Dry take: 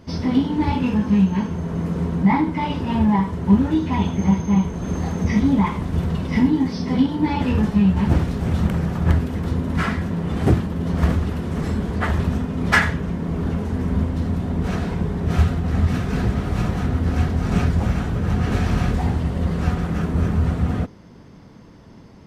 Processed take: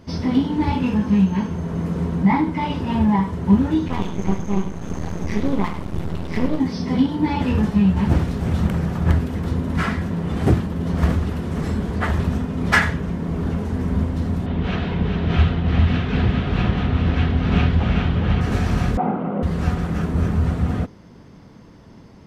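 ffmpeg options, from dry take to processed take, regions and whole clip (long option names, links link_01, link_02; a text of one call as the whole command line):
ffmpeg -i in.wav -filter_complex "[0:a]asettb=1/sr,asplit=3[link_01][link_02][link_03];[link_01]atrim=end=3.884[link_04];[link_02]atrim=start=3.88:end=6.6,asetpts=PTS-STARTPTS,afade=type=in:duration=0.004:curve=qsin,afade=type=out:start_time=2.716:duration=0.004:curve=qsin,aeval=exprs='max(val(0),0)':channel_layout=same,aecho=1:1:101:0.211,atrim=end_sample=119952[link_05];[link_03]atrim=start=6.596[link_06];[link_04][link_05]acrossfade=duration=0.004:curve1=hsin:curve2=qsin[link_07];[link_07][link_06]acrossfade=duration=0.004:curve1=qsin:curve2=hsin,asettb=1/sr,asplit=3[link_08][link_09][link_10];[link_08]atrim=end=14.464[link_11];[link_09]atrim=start=14.46:end=18.41,asetpts=PTS-STARTPTS,afade=type=in:duration=0.004:curve=qsin,afade=type=out:start_time=3.946:duration=0.004:curve=qsin,lowpass=frequency=3200:width_type=q:width=2.4,aecho=1:1:404:0.501,atrim=end_sample=174195[link_12];[link_10]atrim=start=18.406[link_13];[link_11][link_12]acrossfade=duration=0.004:curve1=hsin:curve2=qsin[link_14];[link_14][link_13]acrossfade=duration=0.004:curve1=qsin:curve2=hsin,asettb=1/sr,asplit=3[link_15][link_16][link_17];[link_15]atrim=end=18.974[link_18];[link_16]atrim=start=18.97:end=19.43,asetpts=PTS-STARTPTS,afade=type=in:duration=0.004:curve=qsin,afade=type=out:start_time=0.456:duration=0.004:curve=qsin,highpass=frequency=180:width=0.5412,highpass=frequency=180:width=1.3066,equalizer=frequency=200:width_type=q:width=4:gain=7,equalizer=frequency=330:width_type=q:width=4:gain=4,equalizer=frequency=520:width_type=q:width=4:gain=8,equalizer=frequency=760:width_type=q:width=4:gain=9,equalizer=frequency=1300:width_type=q:width=4:gain=8,equalizer=frequency=1800:width_type=q:width=4:gain=-6,lowpass=frequency=2300:width=0.5412,lowpass=frequency=2300:width=1.3066,bandreject=frequency=1800:width=12[link_19];[link_17]atrim=start=19.426[link_20];[link_18][link_19]acrossfade=duration=0.004:curve1=hsin:curve2=qsin[link_21];[link_21][link_20]acrossfade=duration=0.004:curve1=qsin:curve2=hsin" out.wav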